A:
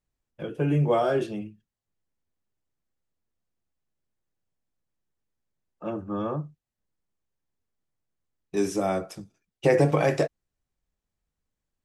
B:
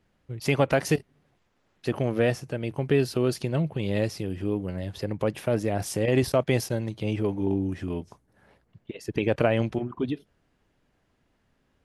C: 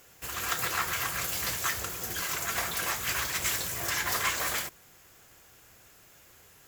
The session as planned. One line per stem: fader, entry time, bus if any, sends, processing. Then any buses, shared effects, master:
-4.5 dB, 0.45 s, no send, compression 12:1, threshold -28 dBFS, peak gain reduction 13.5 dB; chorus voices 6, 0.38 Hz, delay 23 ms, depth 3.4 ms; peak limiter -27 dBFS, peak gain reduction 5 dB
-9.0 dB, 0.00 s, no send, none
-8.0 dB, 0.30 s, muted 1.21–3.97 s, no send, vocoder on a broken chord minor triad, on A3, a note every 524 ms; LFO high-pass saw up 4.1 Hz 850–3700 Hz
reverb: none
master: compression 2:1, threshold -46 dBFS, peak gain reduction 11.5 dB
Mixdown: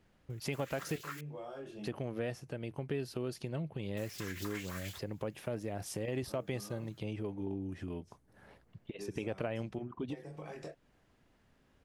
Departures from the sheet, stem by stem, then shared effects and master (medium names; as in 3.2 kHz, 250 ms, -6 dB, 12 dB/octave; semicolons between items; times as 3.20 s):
stem A: missing peak limiter -27 dBFS, peak gain reduction 5 dB; stem B -9.0 dB -> +0.5 dB; stem C: missing vocoder on a broken chord minor triad, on A3, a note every 524 ms